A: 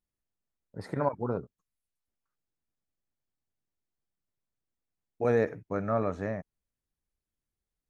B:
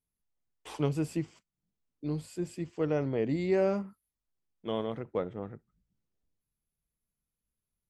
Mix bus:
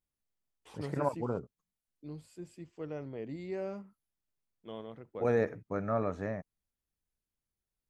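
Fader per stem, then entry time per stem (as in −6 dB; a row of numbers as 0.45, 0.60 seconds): −3.0, −11.0 decibels; 0.00, 0.00 seconds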